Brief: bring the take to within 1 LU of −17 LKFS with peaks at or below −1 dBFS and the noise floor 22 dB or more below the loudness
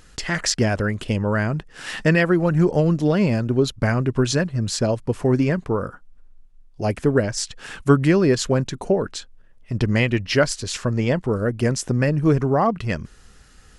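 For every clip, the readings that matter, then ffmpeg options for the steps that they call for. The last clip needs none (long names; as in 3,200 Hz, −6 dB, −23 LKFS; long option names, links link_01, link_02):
integrated loudness −21.0 LKFS; sample peak −2.5 dBFS; target loudness −17.0 LKFS
→ -af "volume=4dB,alimiter=limit=-1dB:level=0:latency=1"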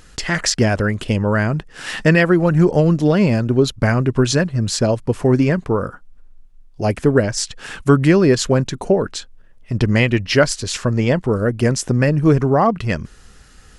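integrated loudness −17.0 LKFS; sample peak −1.0 dBFS; background noise floor −46 dBFS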